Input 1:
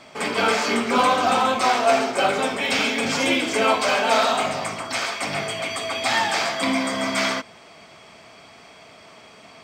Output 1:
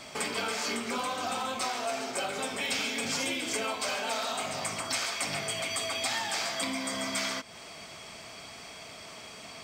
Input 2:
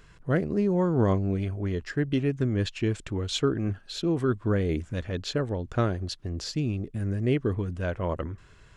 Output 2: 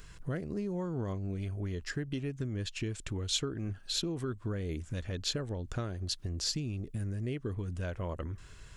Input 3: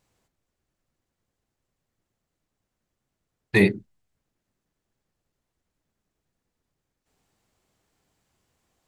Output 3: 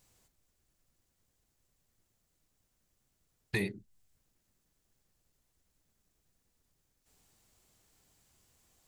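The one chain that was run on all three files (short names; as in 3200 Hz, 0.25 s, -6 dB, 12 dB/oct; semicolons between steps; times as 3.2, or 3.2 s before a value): low shelf 88 Hz +8 dB; compressor 4:1, threshold -32 dBFS; high shelf 4100 Hz +12 dB; gain -2 dB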